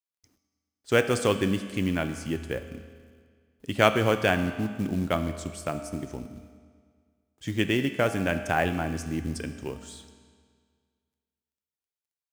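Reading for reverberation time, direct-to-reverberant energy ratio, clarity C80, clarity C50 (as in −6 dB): 1.9 s, 8.0 dB, 10.5 dB, 9.5 dB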